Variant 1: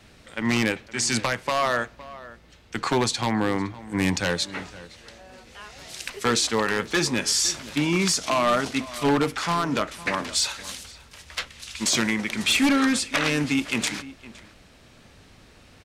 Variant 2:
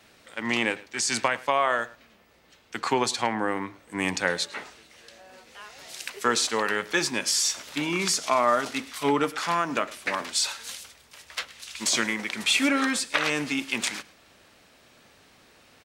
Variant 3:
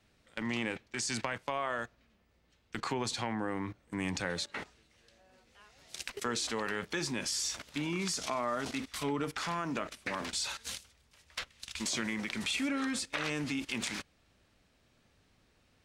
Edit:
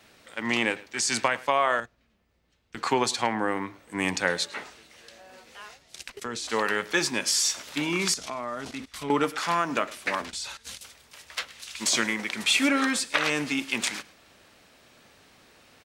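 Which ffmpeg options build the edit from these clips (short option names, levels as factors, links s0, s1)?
-filter_complex "[2:a]asplit=4[s0][s1][s2][s3];[1:a]asplit=5[s4][s5][s6][s7][s8];[s4]atrim=end=1.802[s9];[s0]atrim=start=1.798:end=2.772[s10];[s5]atrim=start=2.768:end=5.79[s11];[s1]atrim=start=5.73:end=6.52[s12];[s6]atrim=start=6.46:end=8.142[s13];[s2]atrim=start=8.138:end=9.102[s14];[s7]atrim=start=9.098:end=10.222[s15];[s3]atrim=start=10.218:end=10.812[s16];[s8]atrim=start=10.808[s17];[s9][s10]acrossfade=d=0.004:c1=hsin:c2=hsin[s18];[s18][s11]acrossfade=d=0.004:c1=hsin:c2=hsin[s19];[s19][s12]acrossfade=d=0.06:c1=tri:c2=tri[s20];[s20][s13]acrossfade=d=0.06:c1=tri:c2=tri[s21];[s21][s14]acrossfade=d=0.004:c1=hsin:c2=hsin[s22];[s22][s15]acrossfade=d=0.004:c1=hsin:c2=hsin[s23];[s23][s16]acrossfade=d=0.004:c1=hsin:c2=hsin[s24];[s24][s17]acrossfade=d=0.004:c1=hsin:c2=hsin"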